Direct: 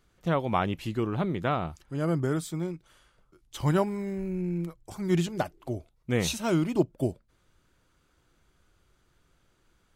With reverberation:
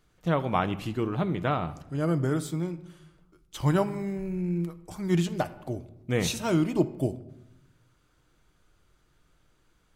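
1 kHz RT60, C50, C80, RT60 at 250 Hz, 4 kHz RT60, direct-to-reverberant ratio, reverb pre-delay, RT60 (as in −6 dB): 0.85 s, 15.5 dB, 18.0 dB, 1.2 s, 0.60 s, 10.5 dB, 6 ms, 0.90 s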